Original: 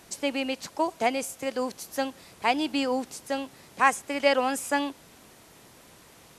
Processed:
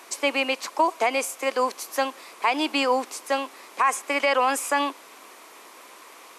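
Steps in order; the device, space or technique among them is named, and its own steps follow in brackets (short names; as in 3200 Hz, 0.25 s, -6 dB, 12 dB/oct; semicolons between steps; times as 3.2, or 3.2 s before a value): laptop speaker (HPF 310 Hz 24 dB/oct; bell 1100 Hz +10 dB 0.47 oct; bell 2300 Hz +5.5 dB 0.45 oct; limiter -16 dBFS, peak gain reduction 13.5 dB); gain +4.5 dB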